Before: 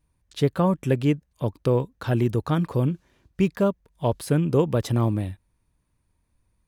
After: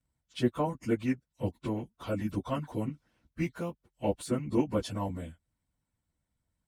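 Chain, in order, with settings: pitch shift by moving bins -2.5 st; harmonic-percussive split harmonic -15 dB; notch comb 410 Hz

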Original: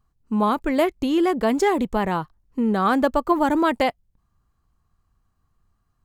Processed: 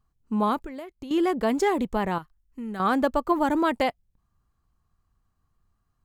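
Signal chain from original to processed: 0.57–1.11 compressor 10:1, threshold -32 dBFS, peak gain reduction 17 dB; 2.18–2.8 graphic EQ 125/250/500/1000/4000 Hz -10/-5/-11/-8/-7 dB; gain -3.5 dB

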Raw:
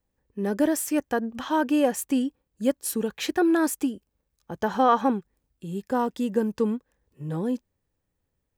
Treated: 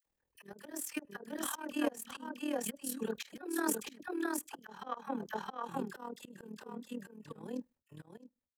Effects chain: gate -53 dBFS, range -49 dB; low shelf 360 Hz -10 dB; dispersion lows, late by 55 ms, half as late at 1100 Hz; on a send at -20 dB: reverb, pre-delay 3 ms; on the sum: dynamic EQ 650 Hz, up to -6 dB, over -41 dBFS, Q 5.2; echo 0.663 s -4.5 dB; AM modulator 39 Hz, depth 60%; upward compressor, threshold -47 dBFS; auto swell 0.328 s; gain -1.5 dB

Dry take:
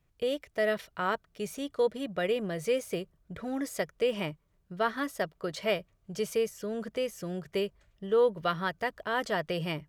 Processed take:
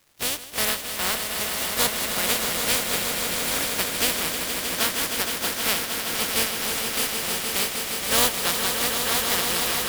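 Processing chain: spectral contrast lowered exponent 0.2; harmoniser +3 st -7 dB; crackle 320/s -49 dBFS; on a send: swelling echo 0.156 s, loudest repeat 5, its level -8 dB; on the sum: gain +3 dB

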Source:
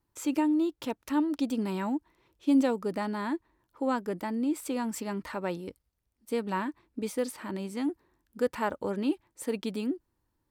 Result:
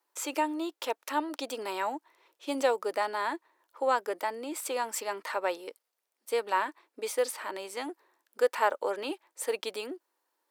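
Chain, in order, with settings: HPF 460 Hz 24 dB/oct; gain +5 dB

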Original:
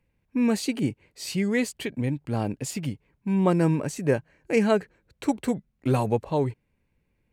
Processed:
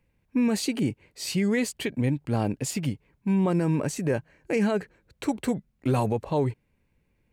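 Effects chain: limiter -18 dBFS, peak gain reduction 9 dB; gain +2 dB

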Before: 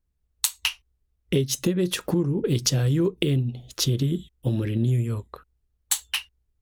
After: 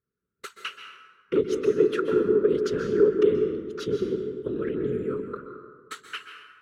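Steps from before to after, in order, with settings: sine folder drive 7 dB, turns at -5.5 dBFS; whisperiser; double band-pass 760 Hz, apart 1.7 oct; plate-style reverb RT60 1.5 s, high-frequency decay 0.55×, pre-delay 0.115 s, DRR 5.5 dB

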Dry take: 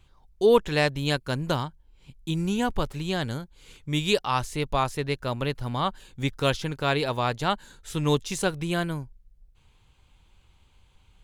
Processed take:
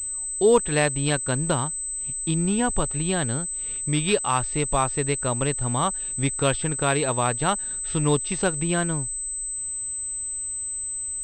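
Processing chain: in parallel at +2.5 dB: compressor, threshold -31 dBFS, peak gain reduction 16.5 dB; on the sum: pulse-width modulation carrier 8100 Hz; gain -1 dB

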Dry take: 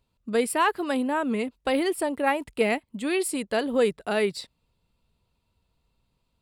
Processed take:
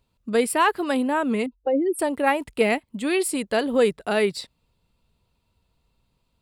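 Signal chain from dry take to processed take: 1.46–1.99 spectral contrast raised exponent 2.4; gain +3 dB

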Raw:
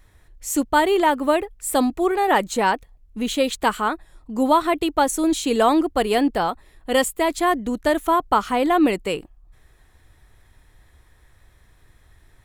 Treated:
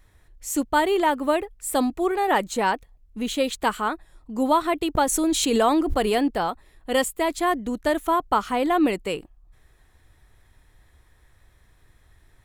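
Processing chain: 4.95–6.21 backwards sustainer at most 28 dB/s; gain -3 dB

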